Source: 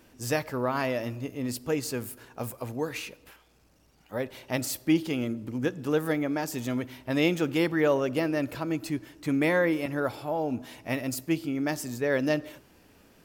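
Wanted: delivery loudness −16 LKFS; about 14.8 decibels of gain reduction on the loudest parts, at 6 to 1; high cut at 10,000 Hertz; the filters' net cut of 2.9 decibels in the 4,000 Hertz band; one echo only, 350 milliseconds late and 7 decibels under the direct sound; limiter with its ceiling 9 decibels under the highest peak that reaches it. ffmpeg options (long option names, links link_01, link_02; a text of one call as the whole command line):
ffmpeg -i in.wav -af "lowpass=10000,equalizer=frequency=4000:width_type=o:gain=-4,acompressor=threshold=-36dB:ratio=6,alimiter=level_in=9dB:limit=-24dB:level=0:latency=1,volume=-9dB,aecho=1:1:350:0.447,volume=26dB" out.wav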